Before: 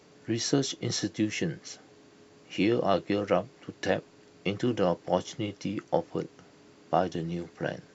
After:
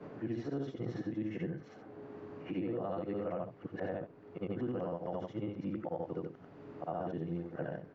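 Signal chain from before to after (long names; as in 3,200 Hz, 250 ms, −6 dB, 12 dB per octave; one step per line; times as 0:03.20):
every overlapping window played backwards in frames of 186 ms
brickwall limiter −25 dBFS, peak gain reduction 10 dB
low-pass filter 1,300 Hz 12 dB per octave
multiband upward and downward compressor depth 70%
level −2 dB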